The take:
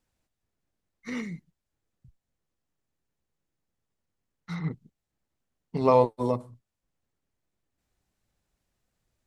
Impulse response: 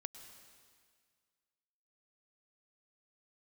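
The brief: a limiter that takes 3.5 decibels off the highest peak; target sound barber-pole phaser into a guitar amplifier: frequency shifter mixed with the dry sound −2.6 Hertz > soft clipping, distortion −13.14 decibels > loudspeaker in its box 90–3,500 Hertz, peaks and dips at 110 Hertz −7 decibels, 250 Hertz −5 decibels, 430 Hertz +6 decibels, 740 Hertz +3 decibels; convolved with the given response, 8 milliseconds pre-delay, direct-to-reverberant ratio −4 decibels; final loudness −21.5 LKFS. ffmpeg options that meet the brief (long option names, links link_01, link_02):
-filter_complex "[0:a]alimiter=limit=-11.5dB:level=0:latency=1,asplit=2[link_01][link_02];[1:a]atrim=start_sample=2205,adelay=8[link_03];[link_02][link_03]afir=irnorm=-1:irlink=0,volume=7.5dB[link_04];[link_01][link_04]amix=inputs=2:normalize=0,asplit=2[link_05][link_06];[link_06]afreqshift=-2.6[link_07];[link_05][link_07]amix=inputs=2:normalize=1,asoftclip=threshold=-15dB,highpass=90,equalizer=frequency=110:width_type=q:width=4:gain=-7,equalizer=frequency=250:width_type=q:width=4:gain=-5,equalizer=frequency=430:width_type=q:width=4:gain=6,equalizer=frequency=740:width_type=q:width=4:gain=3,lowpass=frequency=3500:width=0.5412,lowpass=frequency=3500:width=1.3066,volume=6dB"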